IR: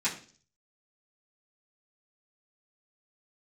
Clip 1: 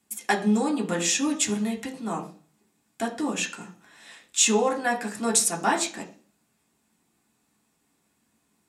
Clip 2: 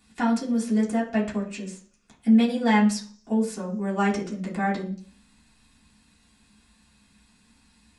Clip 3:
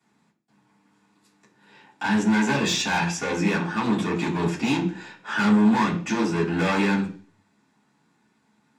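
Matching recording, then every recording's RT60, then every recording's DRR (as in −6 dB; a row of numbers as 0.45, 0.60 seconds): 3; 0.45, 0.45, 0.45 seconds; −1.5, −8.0, −12.5 decibels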